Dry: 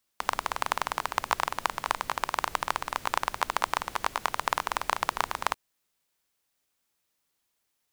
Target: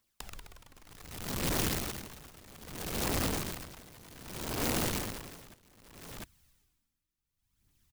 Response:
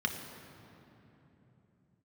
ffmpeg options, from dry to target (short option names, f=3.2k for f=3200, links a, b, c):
-filter_complex "[0:a]asubboost=boost=9:cutoff=180,alimiter=limit=-13.5dB:level=0:latency=1:release=68,dynaudnorm=f=290:g=5:m=9dB,lowshelf=f=270:g=4.5,asoftclip=type=tanh:threshold=-14dB,aphaser=in_gain=1:out_gain=1:delay=3.9:decay=0.48:speed=0.65:type=triangular,aeval=exprs='(mod(17.8*val(0)+1,2)-1)/17.8':c=same,asplit=2[a][b];[b]aecho=0:1:700:0.299[c];[a][c]amix=inputs=2:normalize=0,aeval=exprs='val(0)*pow(10,-23*(0.5-0.5*cos(2*PI*0.63*n/s))/20)':c=same,volume=-1dB"